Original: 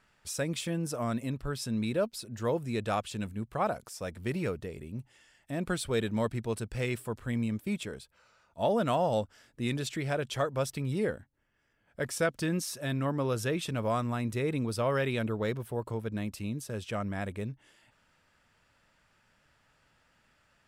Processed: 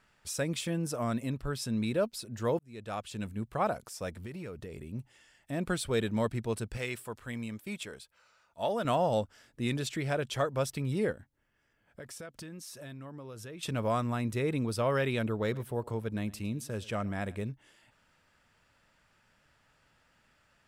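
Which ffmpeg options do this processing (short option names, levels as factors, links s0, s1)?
-filter_complex "[0:a]asettb=1/sr,asplit=3[s0][s1][s2];[s0]atrim=end=4.254[s3];[s1]atrim=start=4.25:end=4.9,asetpts=PTS-STARTPTS,afade=t=in:d=0.004:c=qsin,afade=t=out:st=0.646:d=0.004:c=qsin,acompressor=threshold=0.0126:ratio=6:attack=3.2:release=140:knee=1:detection=peak[s4];[s2]atrim=start=4.896[s5];[s3][s4]acrossfade=d=0.004:c1=hsin:c2=qsin[s6];[s6][s5]acrossfade=d=0.004:c1=qsin:c2=hsin,asettb=1/sr,asplit=3[s7][s8][s9];[s7]atrim=end=6.774[s10];[s8]atrim=start=6.77:end=8.85,asetpts=PTS-STARTPTS,afade=t=in:d=0.004:c=qsin,afade=t=out:st=2.076:d=0.004:c=qsin,lowshelf=f=490:g=-9[s11];[s9]atrim=start=8.846[s12];[s10][s11]acrossfade=d=0.004:c1=hsin:c2=qsin[s13];[s13][s12]acrossfade=d=0.004:c1=qsin:c2=hsin,asettb=1/sr,asplit=3[s14][s15][s16];[s14]atrim=end=11.124[s17];[s15]atrim=start=11.12:end=13.63,asetpts=PTS-STARTPTS,afade=t=in:d=0.004:c=qsin,afade=t=out:st=2.506:d=0.004:c=qsin,acompressor=threshold=0.00708:ratio=5:attack=3.2:release=140:knee=1:detection=peak[s18];[s16]atrim=start=13.626[s19];[s17][s18]acrossfade=d=0.004:c1=hsin:c2=qsin[s20];[s20][s19]acrossfade=d=0.004:c1=qsin:c2=hsin,asettb=1/sr,asplit=3[s21][s22][s23];[s21]atrim=end=15.314[s24];[s22]atrim=start=15.31:end=17.5,asetpts=PTS-STARTPTS,afade=t=in:d=0.004:c=qsin,afade=t=out:st=2.186:d=0.004:c=qsin,aecho=1:1:107:0.0891,atrim=end_sample=96579[s25];[s23]atrim=start=17.496[s26];[s24][s25]acrossfade=d=0.004:c1=hsin:c2=qsin[s27];[s27][s26]acrossfade=d=0.004:c1=qsin:c2=hsin,asplit=2[s28][s29];[s28]atrim=end=2.59,asetpts=PTS-STARTPTS,afade=t=out:st=2.586:d=0.004:c=hsin[s30];[s29]atrim=start=2.59,asetpts=PTS-STARTPTS,afade=t=in:d=0.77[s31];[s30][s31]concat=n=2:v=0:a=1"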